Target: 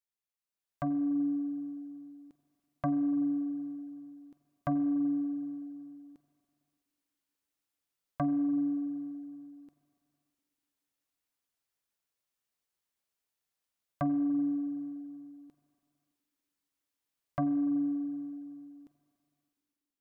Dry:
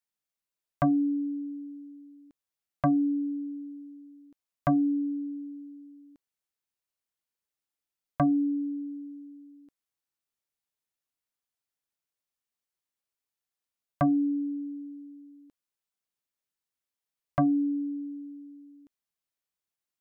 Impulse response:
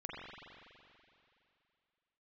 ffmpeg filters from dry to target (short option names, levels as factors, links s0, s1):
-filter_complex "[0:a]alimiter=level_in=1.5:limit=0.0631:level=0:latency=1,volume=0.668,dynaudnorm=f=300:g=5:m=2.82,asplit=2[s0][s1];[1:a]atrim=start_sample=2205[s2];[s1][s2]afir=irnorm=-1:irlink=0,volume=0.355[s3];[s0][s3]amix=inputs=2:normalize=0,volume=0.398"